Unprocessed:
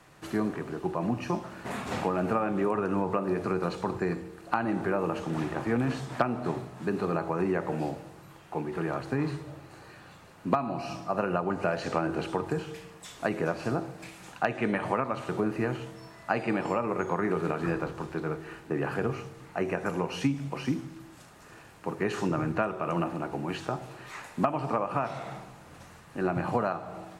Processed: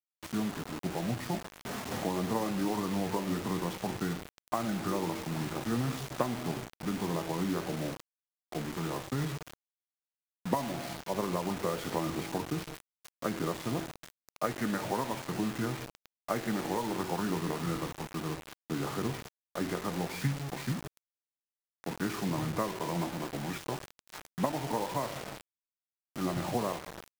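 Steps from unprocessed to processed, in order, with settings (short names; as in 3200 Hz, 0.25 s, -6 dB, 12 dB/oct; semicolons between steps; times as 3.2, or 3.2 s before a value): formant shift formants -4 st; bit-crush 6-bit; gain -4 dB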